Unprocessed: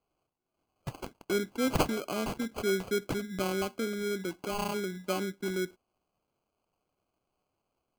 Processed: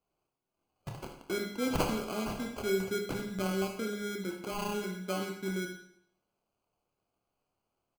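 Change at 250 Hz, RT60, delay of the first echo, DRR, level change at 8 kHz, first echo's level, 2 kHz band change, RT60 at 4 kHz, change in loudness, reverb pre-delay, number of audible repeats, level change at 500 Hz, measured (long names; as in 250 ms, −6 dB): −1.5 dB, 0.70 s, 77 ms, 2.5 dB, −2.0 dB, −12.0 dB, −2.0 dB, 0.65 s, −2.0 dB, 26 ms, 1, −2.5 dB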